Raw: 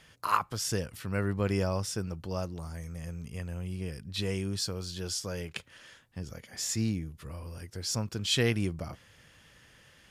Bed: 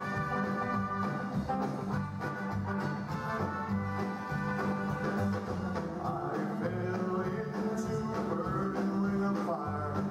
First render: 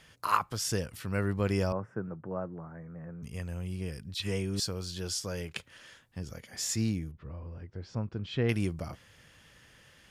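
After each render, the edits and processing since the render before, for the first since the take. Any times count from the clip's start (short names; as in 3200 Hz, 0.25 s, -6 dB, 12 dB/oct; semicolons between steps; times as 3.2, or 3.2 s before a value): 1.72–3.23 elliptic band-pass 120–1600 Hz; 4.14–4.6 dispersion lows, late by 61 ms, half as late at 1500 Hz; 7.11–8.49 tape spacing loss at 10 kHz 41 dB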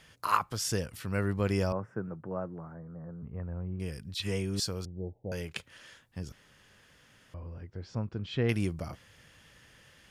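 2.74–3.8 LPF 1400 Hz 24 dB/oct; 4.85–5.32 steep low-pass 840 Hz 96 dB/oct; 6.32–7.34 room tone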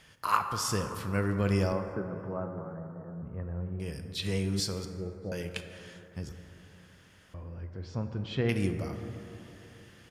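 outdoor echo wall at 110 m, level -28 dB; plate-style reverb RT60 3.3 s, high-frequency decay 0.3×, DRR 6 dB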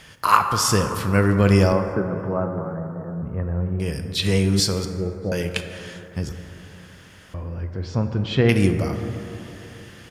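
gain +11.5 dB; limiter -1 dBFS, peak gain reduction 1.5 dB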